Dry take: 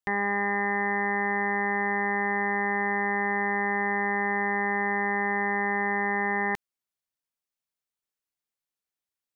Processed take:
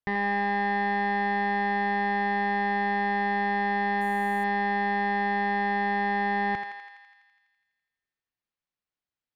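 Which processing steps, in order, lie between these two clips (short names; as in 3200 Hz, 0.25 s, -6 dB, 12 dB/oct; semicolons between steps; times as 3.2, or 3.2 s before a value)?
tone controls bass +5 dB, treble 0 dB; hard clip -20 dBFS, distortion -17 dB; air absorption 170 m; thinning echo 83 ms, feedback 73%, high-pass 620 Hz, level -5 dB; 4.01–4.44 decimation joined by straight lines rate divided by 4×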